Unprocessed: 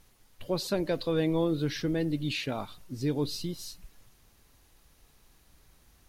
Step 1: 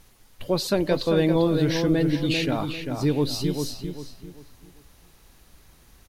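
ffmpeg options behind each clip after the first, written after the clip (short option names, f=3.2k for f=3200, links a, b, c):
-filter_complex "[0:a]asplit=2[a][b];[b]adelay=395,lowpass=f=2.7k:p=1,volume=-5.5dB,asplit=2[c][d];[d]adelay=395,lowpass=f=2.7k:p=1,volume=0.33,asplit=2[e][f];[f]adelay=395,lowpass=f=2.7k:p=1,volume=0.33,asplit=2[g][h];[h]adelay=395,lowpass=f=2.7k:p=1,volume=0.33[i];[a][c][e][g][i]amix=inputs=5:normalize=0,volume=6.5dB"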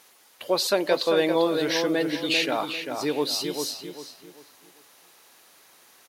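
-af "highpass=490,volume=4dB"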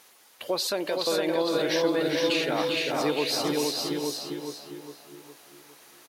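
-filter_complex "[0:a]asplit=2[a][b];[b]adelay=409,lowpass=f=2k:p=1,volume=-10dB,asplit=2[c][d];[d]adelay=409,lowpass=f=2k:p=1,volume=0.49,asplit=2[e][f];[f]adelay=409,lowpass=f=2k:p=1,volume=0.49,asplit=2[g][h];[h]adelay=409,lowpass=f=2k:p=1,volume=0.49,asplit=2[i][j];[j]adelay=409,lowpass=f=2k:p=1,volume=0.49[k];[c][e][g][i][k]amix=inputs=5:normalize=0[l];[a][l]amix=inputs=2:normalize=0,alimiter=limit=-17.5dB:level=0:latency=1:release=189,asplit=2[m][n];[n]aecho=0:1:463|872:0.668|0.15[o];[m][o]amix=inputs=2:normalize=0"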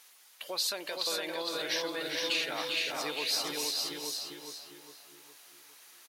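-af "tiltshelf=f=790:g=-8,volume=-9dB"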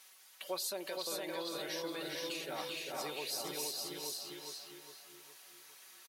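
-filter_complex "[0:a]aecho=1:1:5.3:0.53,acrossover=split=860|7200[a][b][c];[b]acompressor=threshold=-41dB:ratio=6[d];[a][d][c]amix=inputs=3:normalize=0,volume=-2.5dB"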